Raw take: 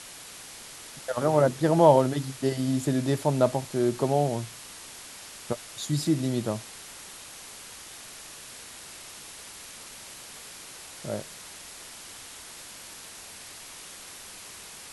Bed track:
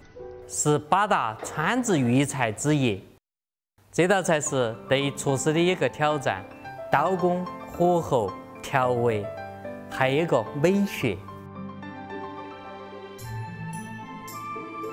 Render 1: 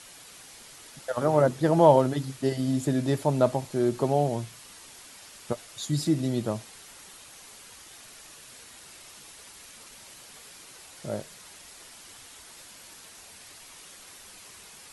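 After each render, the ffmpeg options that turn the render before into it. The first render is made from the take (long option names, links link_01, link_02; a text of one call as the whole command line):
ffmpeg -i in.wav -af "afftdn=noise_reduction=6:noise_floor=-45" out.wav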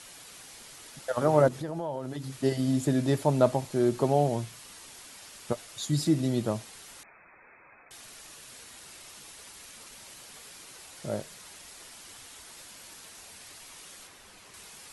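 ffmpeg -i in.wav -filter_complex "[0:a]asettb=1/sr,asplit=3[link_01][link_02][link_03];[link_01]atrim=end=1.484[link_04];[link_02]atrim=start=1.48:end=2.4,asetpts=PTS-STARTPTS,afade=type=in:duration=0.004:curve=qsin,afade=type=out:start_time=0.916:duration=0.004:curve=qsin,acompressor=threshold=-33dB:ratio=4:attack=3.2:release=140:knee=1:detection=peak[link_05];[link_03]atrim=start=2.396[link_06];[link_04][link_05]acrossfade=duration=0.004:curve1=hsin:curve2=qsin[link_07];[link_07][link_06]acrossfade=duration=0.004:curve1=qsin:curve2=hsin,asettb=1/sr,asplit=3[link_08][link_09][link_10];[link_08]atrim=end=7.034[link_11];[link_09]atrim=start=7.03:end=7.91,asetpts=PTS-STARTPTS,afade=type=in:duration=0.004:curve=qsin,afade=type=out:start_time=0.876:duration=0.004:curve=qsin,lowpass=frequency=2200:width_type=q:width=0.5098,lowpass=frequency=2200:width_type=q:width=0.6013,lowpass=frequency=2200:width_type=q:width=0.9,lowpass=frequency=2200:width_type=q:width=2.563,afreqshift=-2600[link_12];[link_10]atrim=start=7.906[link_13];[link_11][link_12]acrossfade=duration=0.004:curve1=hsin:curve2=qsin[link_14];[link_14][link_13]acrossfade=duration=0.004:curve1=qsin:curve2=hsin,asettb=1/sr,asplit=3[link_15][link_16][link_17];[link_15]atrim=end=14.074[link_18];[link_16]atrim=start=14.07:end=14.54,asetpts=PTS-STARTPTS,afade=type=in:duration=0.004:curve=qsin,afade=type=out:start_time=0.466:duration=0.004:curve=qsin,highshelf=frequency=4000:gain=-8.5[link_19];[link_17]atrim=start=14.536[link_20];[link_18][link_19]acrossfade=duration=0.004:curve1=hsin:curve2=qsin[link_21];[link_21][link_20]acrossfade=duration=0.004:curve1=qsin:curve2=hsin" out.wav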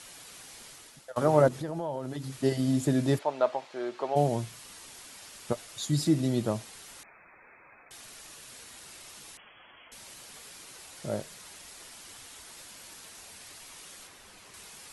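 ffmpeg -i in.wav -filter_complex "[0:a]asplit=3[link_01][link_02][link_03];[link_01]afade=type=out:start_time=3.18:duration=0.02[link_04];[link_02]highpass=620,lowpass=3500,afade=type=in:start_time=3.18:duration=0.02,afade=type=out:start_time=4.15:duration=0.02[link_05];[link_03]afade=type=in:start_time=4.15:duration=0.02[link_06];[link_04][link_05][link_06]amix=inputs=3:normalize=0,asettb=1/sr,asplit=3[link_07][link_08][link_09];[link_07]atrim=end=9.374[link_10];[link_08]atrim=start=9.37:end=9.92,asetpts=PTS-STARTPTS,afade=type=in:duration=0.004:curve=qsin,afade=type=out:start_time=0.546:duration=0.004:curve=qsin,lowpass=frequency=2900:width_type=q:width=0.5098,lowpass=frequency=2900:width_type=q:width=0.6013,lowpass=frequency=2900:width_type=q:width=0.9,lowpass=frequency=2900:width_type=q:width=2.563,afreqshift=-3400[link_11];[link_09]atrim=start=9.916[link_12];[link_10][link_11]acrossfade=duration=0.004:curve1=hsin:curve2=qsin[link_13];[link_13][link_12]acrossfade=duration=0.004:curve1=qsin:curve2=hsin,asplit=2[link_14][link_15];[link_14]atrim=end=1.16,asetpts=PTS-STARTPTS,afade=type=out:start_time=0.67:duration=0.49:silence=0.141254[link_16];[link_15]atrim=start=1.16,asetpts=PTS-STARTPTS,afade=type=in:duration=0.004:curve=hsin:silence=0.141254[link_17];[link_16][link_17]concat=n=2:v=0:a=1" out.wav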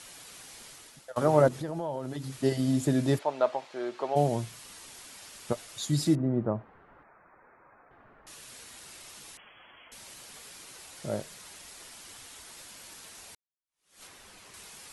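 ffmpeg -i in.wav -filter_complex "[0:a]asettb=1/sr,asplit=3[link_01][link_02][link_03];[link_01]atrim=end=6.154[link_04];[link_02]atrim=start=6.15:end=8.27,asetpts=PTS-STARTPTS,afade=type=in:duration=0.004:curve=qsin,afade=type=out:start_time=2.116:duration=0.004:curve=qsin,lowpass=frequency=1500:width=0.5412,lowpass=frequency=1500:width=1.3066[link_05];[link_03]atrim=start=8.266[link_06];[link_04][link_05]acrossfade=duration=0.004:curve1=hsin:curve2=qsin[link_07];[link_07][link_06]acrossfade=duration=0.004:curve1=qsin:curve2=hsin,asplit=2[link_08][link_09];[link_08]atrim=end=13.35,asetpts=PTS-STARTPTS,afade=type=out:start_time=13.346:duration=0.004:curve=hsin[link_10];[link_09]atrim=start=13.35,asetpts=PTS-STARTPTS,afade=type=in:duration=0.68:curve=exp[link_11];[link_10][link_11]concat=n=2:v=0:a=1" out.wav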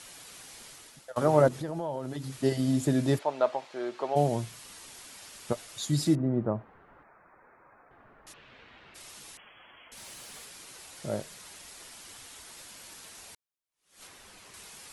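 ffmpeg -i in.wav -filter_complex "[0:a]asplit=3[link_01][link_02][link_03];[link_01]afade=type=out:start_time=8.32:duration=0.02[link_04];[link_02]lowpass=frequency=3000:width=0.5412,lowpass=frequency=3000:width=1.3066,afade=type=in:start_time=8.32:duration=0.02,afade=type=out:start_time=8.94:duration=0.02[link_05];[link_03]afade=type=in:start_time=8.94:duration=0.02[link_06];[link_04][link_05][link_06]amix=inputs=3:normalize=0,asettb=1/sr,asplit=3[link_07][link_08][link_09];[link_07]atrim=end=9.974[link_10];[link_08]atrim=start=9.97:end=10.45,asetpts=PTS-STARTPTS,afade=type=in:duration=0.004:curve=qsin,afade=type=out:start_time=0.476:duration=0.004:curve=qsin,aeval=exprs='val(0)+0.5*0.00224*sgn(val(0))':channel_layout=same[link_11];[link_09]atrim=start=10.446[link_12];[link_10][link_11]acrossfade=duration=0.004:curve1=hsin:curve2=qsin[link_13];[link_13][link_12]acrossfade=duration=0.004:curve1=qsin:curve2=hsin" out.wav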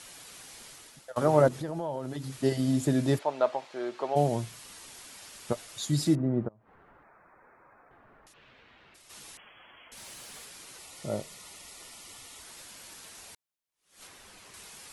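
ffmpeg -i in.wav -filter_complex "[0:a]asplit=3[link_01][link_02][link_03];[link_01]afade=type=out:start_time=6.47:duration=0.02[link_04];[link_02]acompressor=threshold=-53dB:ratio=16:attack=3.2:release=140:knee=1:detection=peak,afade=type=in:start_time=6.47:duration=0.02,afade=type=out:start_time=9.09:duration=0.02[link_05];[link_03]afade=type=in:start_time=9.09:duration=0.02[link_06];[link_04][link_05][link_06]amix=inputs=3:normalize=0,asettb=1/sr,asplit=3[link_07][link_08][link_09];[link_07]atrim=end=10.794[link_10];[link_08]atrim=start=10.79:end=12.41,asetpts=PTS-STARTPTS,afade=type=in:duration=0.004:curve=qsin,afade=type=out:start_time=1.616:duration=0.004:curve=qsin,asuperstop=centerf=1600:order=20:qfactor=6.5[link_11];[link_09]atrim=start=12.406[link_12];[link_10][link_11]acrossfade=duration=0.004:curve1=hsin:curve2=qsin[link_13];[link_13][link_12]acrossfade=duration=0.004:curve1=qsin:curve2=hsin" out.wav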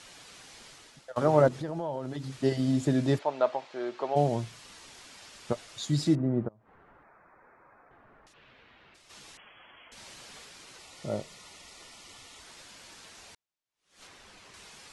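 ffmpeg -i in.wav -af "lowpass=6500" out.wav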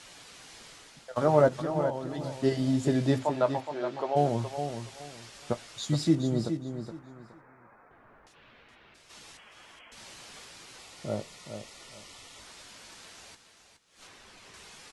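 ffmpeg -i in.wav -filter_complex "[0:a]asplit=2[link_01][link_02];[link_02]adelay=18,volume=-11.5dB[link_03];[link_01][link_03]amix=inputs=2:normalize=0,aecho=1:1:419|838|1257:0.376|0.0902|0.0216" out.wav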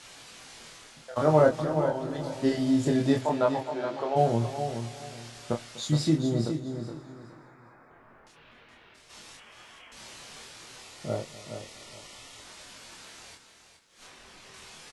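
ffmpeg -i in.wav -filter_complex "[0:a]asplit=2[link_01][link_02];[link_02]adelay=26,volume=-3dB[link_03];[link_01][link_03]amix=inputs=2:normalize=0,aecho=1:1:248|496|744|992|1240:0.119|0.0701|0.0414|0.0244|0.0144" out.wav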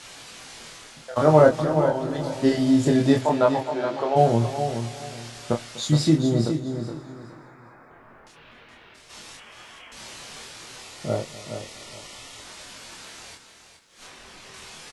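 ffmpeg -i in.wav -af "volume=5.5dB" out.wav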